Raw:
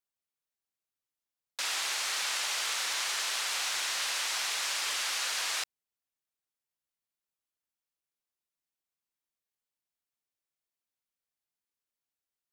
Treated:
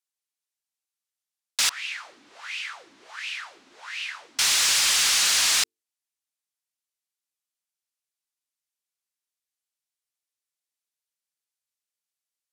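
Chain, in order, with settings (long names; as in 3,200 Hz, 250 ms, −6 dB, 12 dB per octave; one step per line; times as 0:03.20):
Bessel low-pass filter 9,300 Hz, order 2
spectral tilt +3.5 dB per octave
mains-hum notches 50/100/150/200/250/300/350/400/450 Hz
leveller curve on the samples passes 2
0:01.69–0:04.39: LFO wah 1.4 Hz 270–2,700 Hz, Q 6.6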